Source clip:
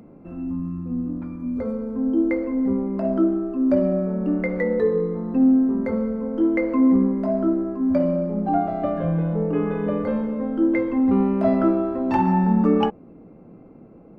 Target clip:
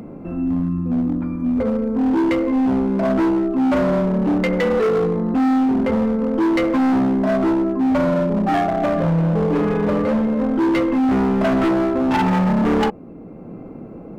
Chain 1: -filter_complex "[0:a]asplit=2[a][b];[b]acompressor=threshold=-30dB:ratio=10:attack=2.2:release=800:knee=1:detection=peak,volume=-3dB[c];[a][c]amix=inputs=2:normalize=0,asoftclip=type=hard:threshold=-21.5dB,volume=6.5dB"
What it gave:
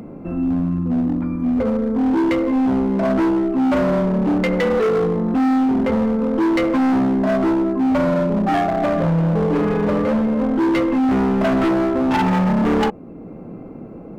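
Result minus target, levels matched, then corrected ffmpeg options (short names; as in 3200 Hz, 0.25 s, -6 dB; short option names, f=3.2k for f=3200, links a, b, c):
compressor: peak gain reduction -7 dB
-filter_complex "[0:a]asplit=2[a][b];[b]acompressor=threshold=-38dB:ratio=10:attack=2.2:release=800:knee=1:detection=peak,volume=-3dB[c];[a][c]amix=inputs=2:normalize=0,asoftclip=type=hard:threshold=-21.5dB,volume=6.5dB"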